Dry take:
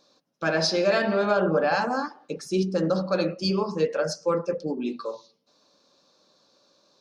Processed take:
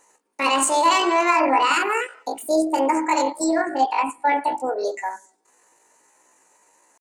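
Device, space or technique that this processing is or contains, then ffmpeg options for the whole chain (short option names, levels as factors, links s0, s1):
chipmunk voice: -filter_complex "[0:a]asetrate=74167,aresample=44100,atempo=0.594604,asettb=1/sr,asplit=3[s0][s1][s2];[s0]atrim=end=3.444[s3];[s1]atrim=start=3.44:end=4.37,asetpts=PTS-STARTPTS,afade=t=in:d=0.004:c=qsin,afade=t=out:st=0.926:d=0.004:c=qsin,lowpass=5100[s4];[s2]atrim=start=4.366[s5];[s3][s4]acrossfade=d=0.004:c1=hsin:c2=qsin[s6];[s6][s5]acrossfade=d=0.004:c1=qsin:c2=hsin,volume=1.68"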